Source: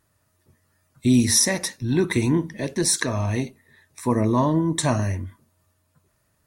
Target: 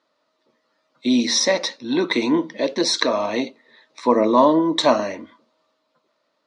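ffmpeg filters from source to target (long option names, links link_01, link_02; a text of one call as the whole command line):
ffmpeg -i in.wav -af "dynaudnorm=framelen=240:gausssize=9:maxgain=5dB,highpass=frequency=290:width=0.5412,highpass=frequency=290:width=1.3066,equalizer=frequency=380:width_type=q:width=4:gain=-8,equalizer=frequency=540:width_type=q:width=4:gain=4,equalizer=frequency=770:width_type=q:width=4:gain=-3,equalizer=frequency=1700:width_type=q:width=4:gain=-9,equalizer=frequency=2600:width_type=q:width=4:gain=-4,equalizer=frequency=4000:width_type=q:width=4:gain=3,lowpass=frequency=4600:width=0.5412,lowpass=frequency=4600:width=1.3066,volume=5dB" out.wav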